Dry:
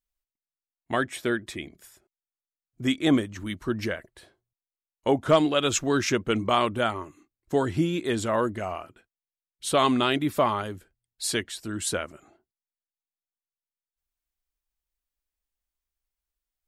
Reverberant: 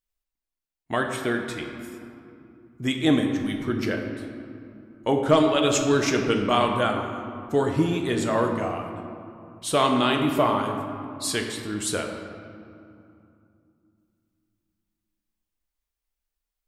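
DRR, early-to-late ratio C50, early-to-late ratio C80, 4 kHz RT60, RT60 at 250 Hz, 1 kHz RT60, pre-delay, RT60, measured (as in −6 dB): 2.5 dB, 4.5 dB, 6.0 dB, 1.4 s, 3.7 s, 2.7 s, 7 ms, 2.7 s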